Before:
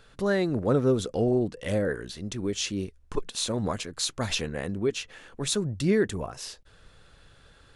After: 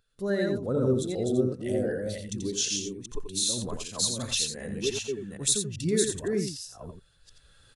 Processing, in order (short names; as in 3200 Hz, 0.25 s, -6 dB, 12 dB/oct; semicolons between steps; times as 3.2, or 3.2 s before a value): reverse delay 0.384 s, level -2 dB; recorder AGC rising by 8.4 dB/s; pre-emphasis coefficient 0.8; echo 85 ms -5 dB; spectral expander 1.5:1; gain +5.5 dB